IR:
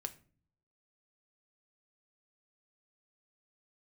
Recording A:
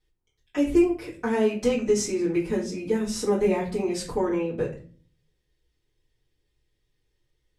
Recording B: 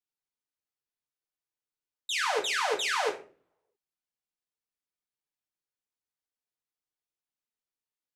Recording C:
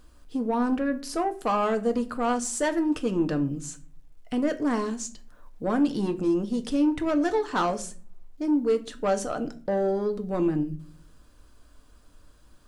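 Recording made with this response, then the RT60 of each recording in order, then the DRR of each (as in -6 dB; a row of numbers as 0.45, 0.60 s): C; 0.45, 0.45, 0.45 s; -8.5, -1.0, 7.0 dB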